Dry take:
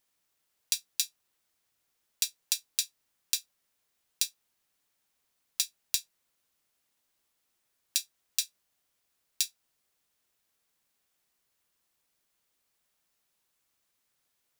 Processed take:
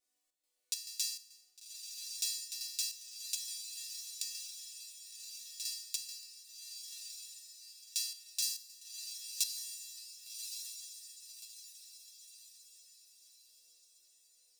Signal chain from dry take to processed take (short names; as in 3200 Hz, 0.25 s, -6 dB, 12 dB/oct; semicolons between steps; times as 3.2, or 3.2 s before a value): resonator bank B3 minor, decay 0.76 s; 8.42–9.44 high shelf 5200 Hz +6 dB; chopper 2.3 Hz, depth 60%, duty 70%; graphic EQ 500/1000/4000/8000 Hz +10/-4/+4/+6 dB; diffused feedback echo 1.16 s, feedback 45%, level -5 dB; gain +14 dB